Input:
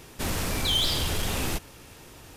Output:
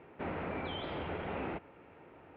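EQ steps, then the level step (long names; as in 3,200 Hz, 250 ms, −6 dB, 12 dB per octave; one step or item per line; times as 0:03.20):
high-frequency loss of the air 370 metres
loudspeaker in its box 110–2,200 Hz, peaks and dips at 120 Hz −8 dB, 230 Hz −3 dB, 1,100 Hz −5 dB, 1,700 Hz −6 dB
low-shelf EQ 320 Hz −7 dB
0.0 dB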